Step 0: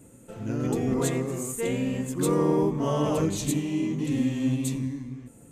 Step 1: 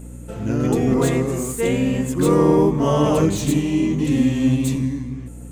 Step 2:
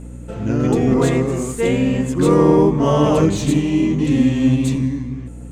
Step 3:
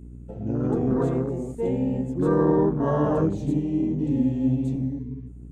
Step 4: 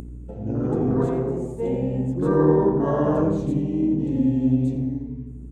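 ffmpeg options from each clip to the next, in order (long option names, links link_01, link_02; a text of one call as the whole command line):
ffmpeg -i in.wav -filter_complex "[0:a]acrossover=split=2900[link_01][link_02];[link_02]asoftclip=type=tanh:threshold=-35.5dB[link_03];[link_01][link_03]amix=inputs=2:normalize=0,aeval=exprs='val(0)+0.00708*(sin(2*PI*60*n/s)+sin(2*PI*2*60*n/s)/2+sin(2*PI*3*60*n/s)/3+sin(2*PI*4*60*n/s)/4+sin(2*PI*5*60*n/s)/5)':channel_layout=same,volume=8dB" out.wav
ffmpeg -i in.wav -af "adynamicsmooth=sensitivity=2.5:basefreq=7500,volume=2.5dB" out.wav
ffmpeg -i in.wav -af "afwtdn=0.0631,volume=-7.5dB" out.wav
ffmpeg -i in.wav -filter_complex "[0:a]asplit=2[link_01][link_02];[link_02]adelay=86,lowpass=frequency=1800:poles=1,volume=-4dB,asplit=2[link_03][link_04];[link_04]adelay=86,lowpass=frequency=1800:poles=1,volume=0.49,asplit=2[link_05][link_06];[link_06]adelay=86,lowpass=frequency=1800:poles=1,volume=0.49,asplit=2[link_07][link_08];[link_08]adelay=86,lowpass=frequency=1800:poles=1,volume=0.49,asplit=2[link_09][link_10];[link_10]adelay=86,lowpass=frequency=1800:poles=1,volume=0.49,asplit=2[link_11][link_12];[link_12]adelay=86,lowpass=frequency=1800:poles=1,volume=0.49[link_13];[link_01][link_03][link_05][link_07][link_09][link_11][link_13]amix=inputs=7:normalize=0,acompressor=mode=upward:threshold=-31dB:ratio=2.5" out.wav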